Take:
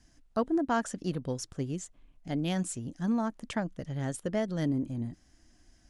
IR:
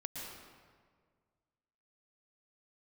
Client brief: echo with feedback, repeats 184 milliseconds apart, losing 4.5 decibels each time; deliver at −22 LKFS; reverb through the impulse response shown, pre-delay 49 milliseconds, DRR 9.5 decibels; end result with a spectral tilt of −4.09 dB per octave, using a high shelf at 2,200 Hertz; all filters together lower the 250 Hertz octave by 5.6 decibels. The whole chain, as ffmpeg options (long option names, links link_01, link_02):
-filter_complex "[0:a]equalizer=frequency=250:width_type=o:gain=-7.5,highshelf=frequency=2200:gain=7,aecho=1:1:184|368|552|736|920|1104|1288|1472|1656:0.596|0.357|0.214|0.129|0.0772|0.0463|0.0278|0.0167|0.01,asplit=2[link_01][link_02];[1:a]atrim=start_sample=2205,adelay=49[link_03];[link_02][link_03]afir=irnorm=-1:irlink=0,volume=-9dB[link_04];[link_01][link_04]amix=inputs=2:normalize=0,volume=10.5dB"